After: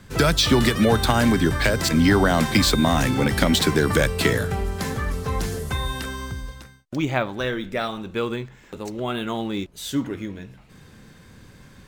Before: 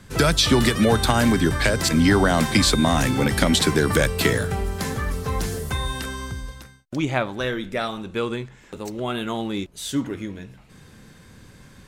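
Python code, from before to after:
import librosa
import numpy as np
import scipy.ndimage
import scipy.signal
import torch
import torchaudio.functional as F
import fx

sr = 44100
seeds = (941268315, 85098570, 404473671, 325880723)

y = np.interp(np.arange(len(x)), np.arange(len(x))[::2], x[::2])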